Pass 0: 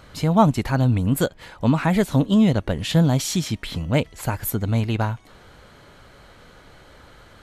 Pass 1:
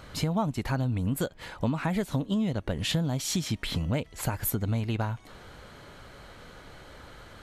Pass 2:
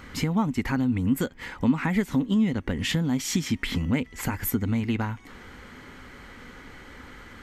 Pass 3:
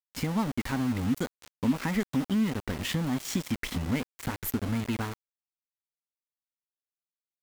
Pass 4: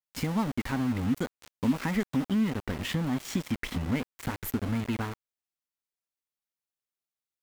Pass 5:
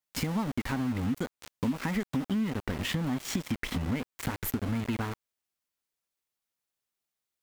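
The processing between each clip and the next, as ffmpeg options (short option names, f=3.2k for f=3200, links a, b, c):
-af "acompressor=threshold=-25dB:ratio=6"
-af "equalizer=f=125:t=o:w=0.33:g=-7,equalizer=f=250:t=o:w=0.33:g=9,equalizer=f=630:t=o:w=0.33:g=-11,equalizer=f=2k:t=o:w=0.33:g=8,equalizer=f=4k:t=o:w=0.33:g=-6,equalizer=f=10k:t=o:w=0.33:g=-7,volume=2.5dB"
-af "aeval=exprs='val(0)*gte(abs(val(0)),0.0376)':c=same,volume=-4dB"
-af "adynamicequalizer=threshold=0.00282:dfrequency=3600:dqfactor=0.7:tfrequency=3600:tqfactor=0.7:attack=5:release=100:ratio=0.375:range=2.5:mode=cutabove:tftype=highshelf"
-af "acompressor=threshold=-34dB:ratio=3,volume=5dB"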